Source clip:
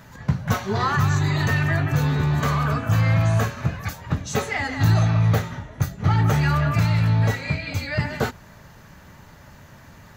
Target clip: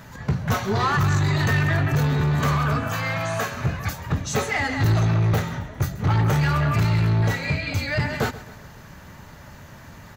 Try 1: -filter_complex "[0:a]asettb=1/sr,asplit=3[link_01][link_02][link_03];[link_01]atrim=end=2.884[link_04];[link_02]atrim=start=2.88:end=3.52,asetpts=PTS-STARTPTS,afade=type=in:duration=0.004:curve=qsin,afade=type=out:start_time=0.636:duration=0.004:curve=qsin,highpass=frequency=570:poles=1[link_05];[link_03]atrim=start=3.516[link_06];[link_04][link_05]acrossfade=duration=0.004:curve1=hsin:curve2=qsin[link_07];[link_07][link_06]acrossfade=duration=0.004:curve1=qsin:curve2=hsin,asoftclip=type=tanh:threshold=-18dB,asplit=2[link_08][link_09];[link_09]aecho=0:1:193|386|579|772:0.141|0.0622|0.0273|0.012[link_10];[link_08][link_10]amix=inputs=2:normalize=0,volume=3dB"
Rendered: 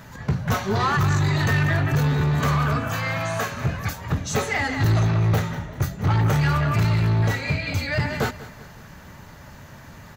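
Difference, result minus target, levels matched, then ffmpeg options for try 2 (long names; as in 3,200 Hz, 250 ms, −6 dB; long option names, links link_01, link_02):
echo 61 ms late
-filter_complex "[0:a]asettb=1/sr,asplit=3[link_01][link_02][link_03];[link_01]atrim=end=2.884[link_04];[link_02]atrim=start=2.88:end=3.52,asetpts=PTS-STARTPTS,afade=type=in:duration=0.004:curve=qsin,afade=type=out:start_time=0.636:duration=0.004:curve=qsin,highpass=frequency=570:poles=1[link_05];[link_03]atrim=start=3.516[link_06];[link_04][link_05]acrossfade=duration=0.004:curve1=hsin:curve2=qsin[link_07];[link_07][link_06]acrossfade=duration=0.004:curve1=qsin:curve2=hsin,asoftclip=type=tanh:threshold=-18dB,asplit=2[link_08][link_09];[link_09]aecho=0:1:132|264|396|528:0.141|0.0622|0.0273|0.012[link_10];[link_08][link_10]amix=inputs=2:normalize=0,volume=3dB"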